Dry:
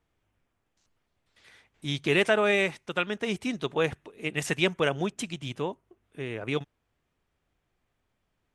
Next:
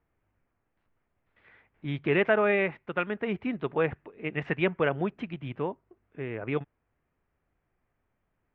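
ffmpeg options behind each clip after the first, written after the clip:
-af "lowpass=f=2.3k:w=0.5412,lowpass=f=2.3k:w=1.3066"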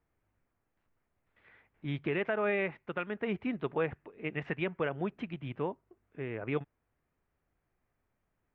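-af "alimiter=limit=-17.5dB:level=0:latency=1:release=269,volume=-3dB"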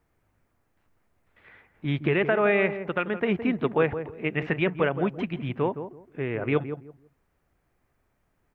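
-filter_complex "[0:a]asplit=2[a][b];[b]adelay=166,lowpass=f=840:p=1,volume=-8.5dB,asplit=2[c][d];[d]adelay=166,lowpass=f=840:p=1,volume=0.24,asplit=2[e][f];[f]adelay=166,lowpass=f=840:p=1,volume=0.24[g];[a][c][e][g]amix=inputs=4:normalize=0,volume=8.5dB"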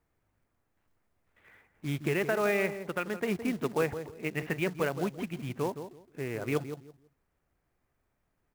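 -af "acrusher=bits=4:mode=log:mix=0:aa=0.000001,volume=-6dB"

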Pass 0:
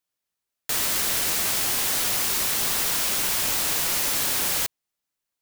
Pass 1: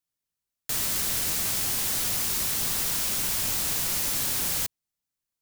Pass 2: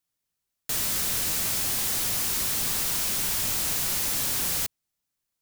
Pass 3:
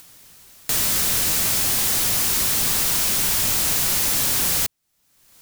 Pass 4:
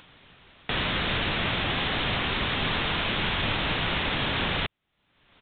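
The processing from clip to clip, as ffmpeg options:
-af "bass=f=250:g=9,treble=f=4k:g=4,volume=-6.5dB"
-af "asoftclip=type=tanh:threshold=-26.5dB,volume=4dB"
-af "acompressor=mode=upward:threshold=-31dB:ratio=2.5,volume=6.5dB"
-af "aresample=8000,aresample=44100,volume=2.5dB"

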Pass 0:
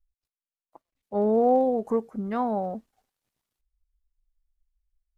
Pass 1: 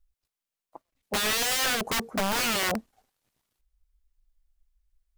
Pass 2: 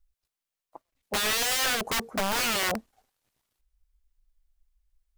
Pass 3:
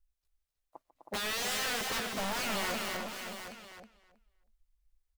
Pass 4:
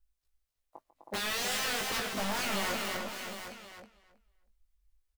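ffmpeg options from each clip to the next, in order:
-af "aeval=exprs='(mod(22.4*val(0)+1,2)-1)/22.4':c=same,volume=5.5dB"
-af "equalizer=f=200:t=o:w=1.6:g=-3"
-filter_complex "[0:a]asplit=2[a][b];[b]aecho=0:1:145|253|766:0.141|0.422|0.211[c];[a][c]amix=inputs=2:normalize=0,asoftclip=type=hard:threshold=-27.5dB,asplit=2[d][e];[e]adelay=319,lowpass=f=4.9k:p=1,volume=-4.5dB,asplit=2[f][g];[g]adelay=319,lowpass=f=4.9k:p=1,volume=0.17,asplit=2[h][i];[i]adelay=319,lowpass=f=4.9k:p=1,volume=0.17[j];[f][h][j]amix=inputs=3:normalize=0[k];[d][k]amix=inputs=2:normalize=0,volume=-5dB"
-filter_complex "[0:a]asplit=2[a][b];[b]adelay=20,volume=-6dB[c];[a][c]amix=inputs=2:normalize=0"

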